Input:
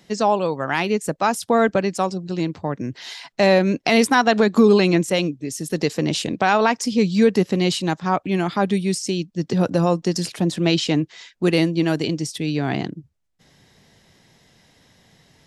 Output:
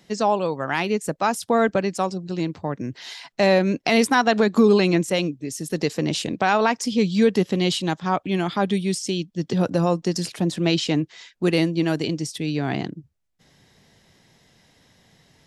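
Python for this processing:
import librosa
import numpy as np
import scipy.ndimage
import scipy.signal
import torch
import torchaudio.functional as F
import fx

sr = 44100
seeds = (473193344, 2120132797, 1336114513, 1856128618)

y = fx.peak_eq(x, sr, hz=3300.0, db=7.0, octaves=0.23, at=(6.85, 9.62))
y = y * librosa.db_to_amplitude(-2.0)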